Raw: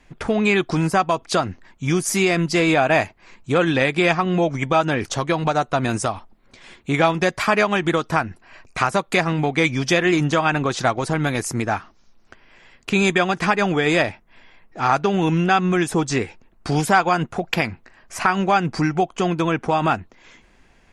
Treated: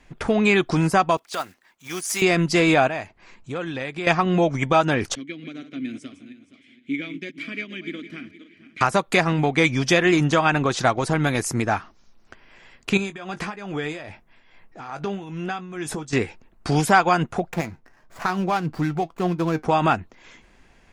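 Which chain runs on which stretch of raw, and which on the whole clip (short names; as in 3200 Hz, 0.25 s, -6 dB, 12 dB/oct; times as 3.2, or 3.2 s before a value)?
1.17–2.22 block floating point 5-bit + HPF 950 Hz 6 dB/oct + transient shaper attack -11 dB, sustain -5 dB
2.88–4.07 LPF 10000 Hz + compressor 1.5:1, threshold -46 dBFS
5.15–8.81 regenerating reverse delay 0.235 s, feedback 47%, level -11 dB + vowel filter i + high shelf 8400 Hz +9.5 dB
12.97–16.13 compressor 4:1, threshold -25 dBFS + tremolo 2.4 Hz, depth 68% + doubler 20 ms -11 dB
17.47–19.65 median filter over 15 samples + flange 1.1 Hz, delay 5.4 ms, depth 1.6 ms, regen +69%
whole clip: dry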